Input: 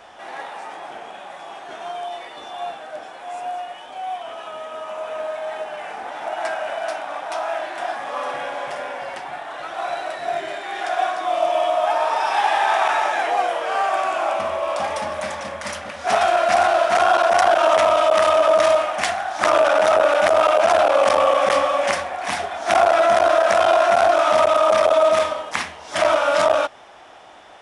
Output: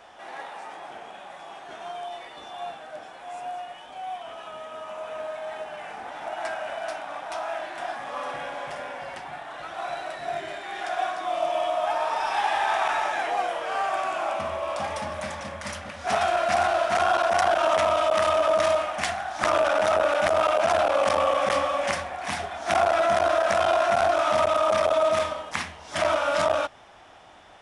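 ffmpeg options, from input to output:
-af "asubboost=boost=2:cutoff=240,volume=-5dB"

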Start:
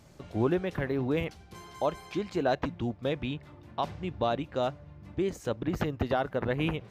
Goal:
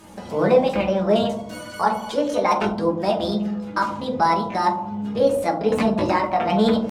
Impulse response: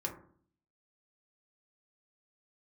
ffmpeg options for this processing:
-filter_complex "[0:a]lowshelf=f=200:g=-7.5,asplit=2[a][b];[b]acompressor=threshold=-42dB:ratio=6,volume=-1dB[c];[a][c]amix=inputs=2:normalize=0,flanger=delay=4.5:depth=2.1:regen=40:speed=1.3:shape=sinusoidal,acrossover=split=2500[d][e];[e]aeval=exprs='clip(val(0),-1,0.00473)':c=same[f];[d][f]amix=inputs=2:normalize=0,asetrate=62367,aresample=44100,atempo=0.707107[g];[1:a]atrim=start_sample=2205,asetrate=25578,aresample=44100[h];[g][h]afir=irnorm=-1:irlink=0,volume=8dB"

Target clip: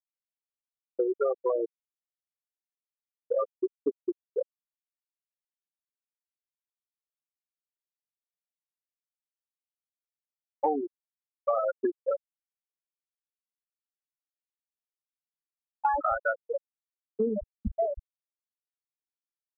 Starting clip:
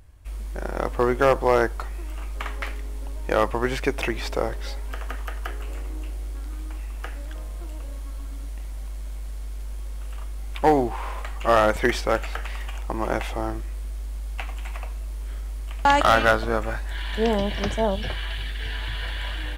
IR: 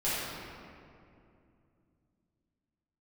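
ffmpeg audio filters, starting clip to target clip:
-af "afftfilt=real='re*gte(hypot(re,im),0.562)':imag='im*gte(hypot(re,im),0.562)':win_size=1024:overlap=0.75,acompressor=threshold=-33dB:ratio=5,volume=7dB"

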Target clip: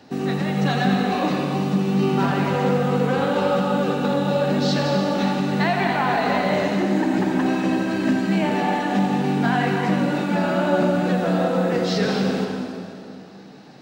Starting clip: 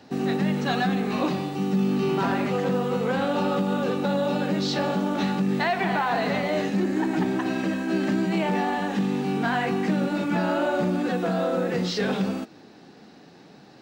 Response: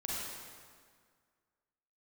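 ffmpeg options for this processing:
-filter_complex "[0:a]asplit=2[a][b];[1:a]atrim=start_sample=2205,asetrate=31752,aresample=44100,adelay=84[c];[b][c]afir=irnorm=-1:irlink=0,volume=-7dB[d];[a][d]amix=inputs=2:normalize=0,volume=1.5dB"

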